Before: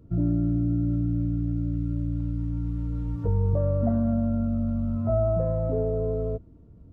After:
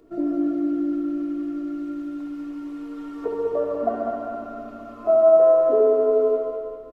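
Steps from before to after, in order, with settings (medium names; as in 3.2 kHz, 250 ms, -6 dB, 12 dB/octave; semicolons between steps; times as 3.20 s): high-pass 340 Hz 24 dB/octave; comb 2.8 ms, depth 63%; added noise brown -69 dBFS; feedback delay 197 ms, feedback 47%, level -5 dB; on a send at -2 dB: reverberation RT60 1.5 s, pre-delay 66 ms; on the sum: trim +7 dB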